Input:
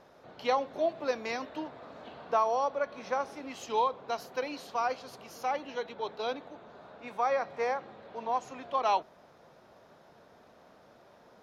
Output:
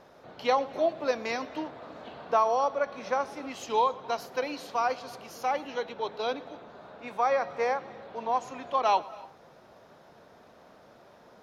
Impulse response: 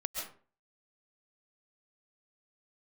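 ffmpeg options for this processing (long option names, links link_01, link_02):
-filter_complex "[0:a]asplit=2[link_01][link_02];[1:a]atrim=start_sample=2205,adelay=116[link_03];[link_02][link_03]afir=irnorm=-1:irlink=0,volume=-20.5dB[link_04];[link_01][link_04]amix=inputs=2:normalize=0,volume=3dB"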